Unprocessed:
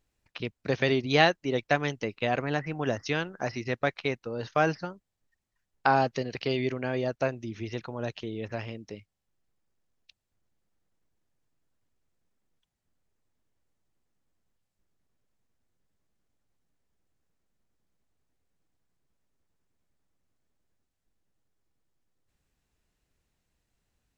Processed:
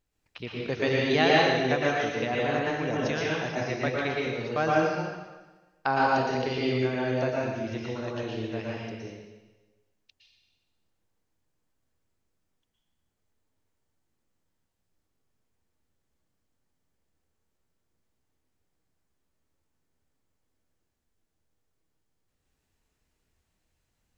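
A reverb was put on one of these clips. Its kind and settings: plate-style reverb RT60 1.2 s, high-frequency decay 1×, pre-delay 0.1 s, DRR -5 dB; gain -4 dB

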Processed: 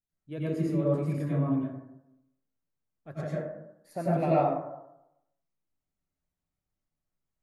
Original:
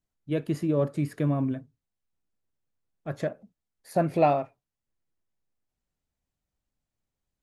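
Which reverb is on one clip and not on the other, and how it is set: plate-style reverb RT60 0.85 s, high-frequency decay 0.35×, pre-delay 80 ms, DRR -8 dB; gain -11.5 dB

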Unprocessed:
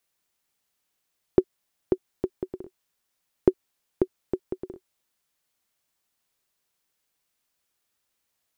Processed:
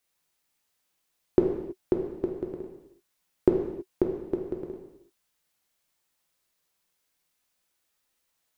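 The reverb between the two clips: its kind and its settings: non-linear reverb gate 0.35 s falling, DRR 0.5 dB; gain -1.5 dB

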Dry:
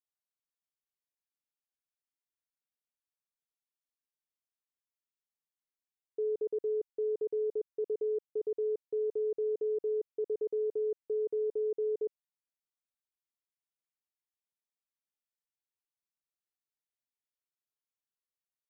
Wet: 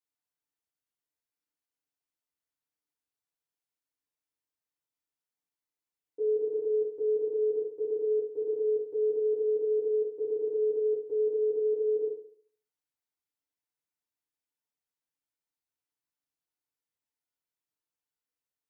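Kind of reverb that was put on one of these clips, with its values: FDN reverb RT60 0.54 s, low-frequency decay 1×, high-frequency decay 0.55×, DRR -5 dB; gain -5 dB

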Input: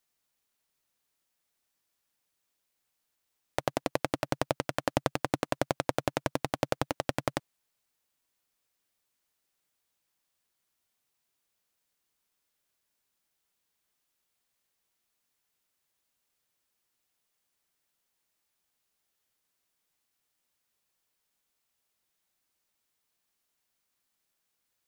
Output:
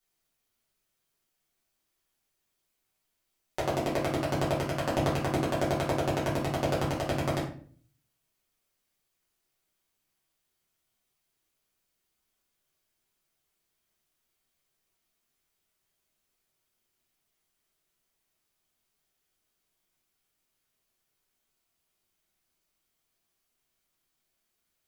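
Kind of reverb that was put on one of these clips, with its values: shoebox room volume 47 m³, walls mixed, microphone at 1.5 m; gain -6.5 dB

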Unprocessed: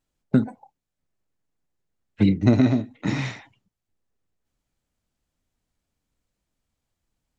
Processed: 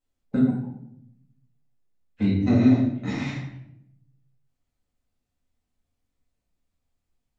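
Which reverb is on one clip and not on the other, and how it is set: shoebox room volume 180 m³, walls mixed, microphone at 2 m; gain -10.5 dB

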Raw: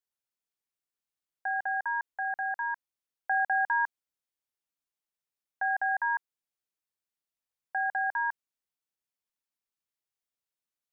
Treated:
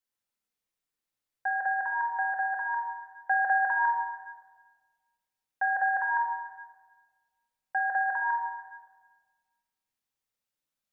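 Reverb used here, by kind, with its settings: shoebox room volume 1500 m³, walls mixed, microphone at 2.1 m

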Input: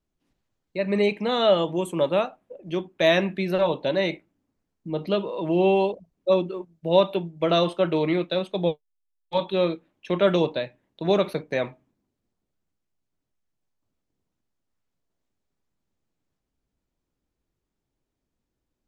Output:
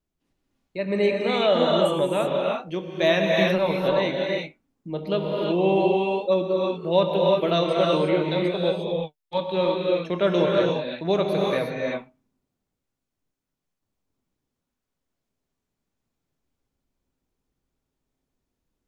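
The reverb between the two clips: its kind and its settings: non-linear reverb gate 0.38 s rising, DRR -1.5 dB; gain -2 dB

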